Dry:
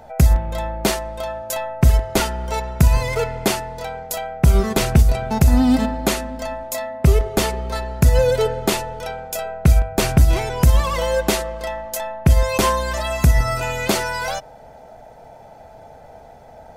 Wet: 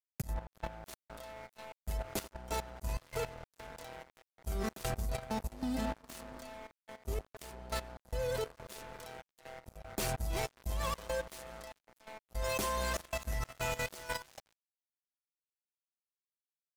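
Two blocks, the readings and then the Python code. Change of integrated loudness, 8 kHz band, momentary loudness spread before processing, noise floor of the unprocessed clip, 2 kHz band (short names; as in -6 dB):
-20.0 dB, -17.5 dB, 11 LU, -43 dBFS, -16.5 dB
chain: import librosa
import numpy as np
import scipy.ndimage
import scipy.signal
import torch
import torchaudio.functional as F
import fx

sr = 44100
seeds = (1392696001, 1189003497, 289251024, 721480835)

y = fx.auto_swell(x, sr, attack_ms=212.0)
y = fx.step_gate(y, sr, bpm=96, pattern='xxx.xx.x', floor_db=-12.0, edge_ms=4.5)
y = fx.echo_wet_bandpass(y, sr, ms=87, feedback_pct=37, hz=500.0, wet_db=-17.0)
y = 10.0 ** (-2.0 / 20.0) * np.tanh(y / 10.0 ** (-2.0 / 20.0))
y = fx.echo_feedback(y, sr, ms=369, feedback_pct=56, wet_db=-18.5)
y = np.sign(y) * np.maximum(np.abs(y) - 10.0 ** (-29.5 / 20.0), 0.0)
y = fx.high_shelf(y, sr, hz=6400.0, db=7.0)
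y = fx.level_steps(y, sr, step_db=14)
y = y * librosa.db_to_amplitude(-6.0)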